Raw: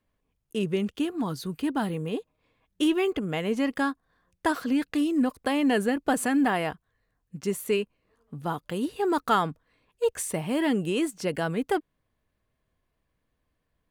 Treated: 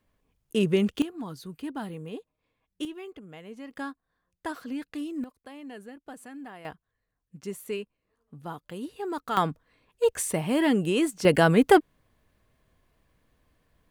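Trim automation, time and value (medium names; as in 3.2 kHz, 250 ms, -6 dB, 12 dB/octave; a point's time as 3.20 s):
+4 dB
from 1.02 s -7.5 dB
from 2.85 s -16 dB
from 3.71 s -9 dB
from 5.24 s -19 dB
from 6.65 s -7.5 dB
from 9.37 s +2 dB
from 11.25 s +9 dB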